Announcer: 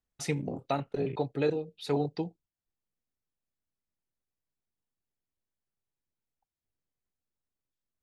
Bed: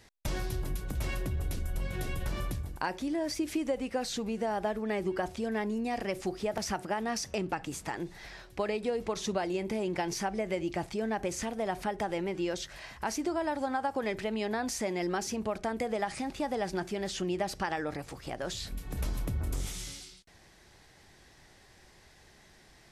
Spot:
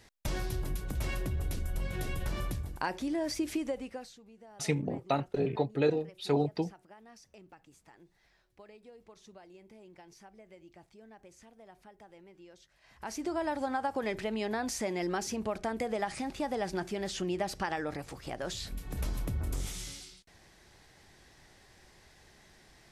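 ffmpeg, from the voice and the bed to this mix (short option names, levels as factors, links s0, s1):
-filter_complex "[0:a]adelay=4400,volume=1.12[s0];[1:a]volume=10.6,afade=t=out:st=3.49:d=0.67:silence=0.0841395,afade=t=in:st=12.81:d=0.58:silence=0.0891251[s1];[s0][s1]amix=inputs=2:normalize=0"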